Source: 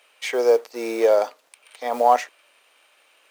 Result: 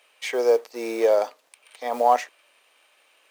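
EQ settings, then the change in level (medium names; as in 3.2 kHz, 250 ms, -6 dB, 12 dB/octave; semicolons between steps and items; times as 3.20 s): band-stop 1.4 kHz, Q 20; -2.0 dB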